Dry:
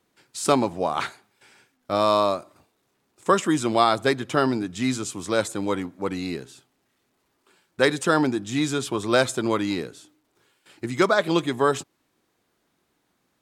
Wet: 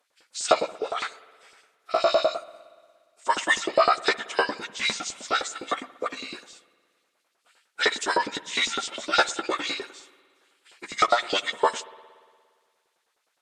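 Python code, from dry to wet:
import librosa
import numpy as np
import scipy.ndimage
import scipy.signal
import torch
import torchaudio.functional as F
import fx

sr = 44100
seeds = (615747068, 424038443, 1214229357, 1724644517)

y = fx.pitch_keep_formants(x, sr, semitones=-10.0)
y = fx.filter_lfo_highpass(y, sr, shape='saw_up', hz=9.8, low_hz=380.0, high_hz=5000.0, q=1.2)
y = fx.rev_spring(y, sr, rt60_s=1.8, pass_ms=(58,), chirp_ms=50, drr_db=18.0)
y = y * librosa.db_to_amplitude(1.0)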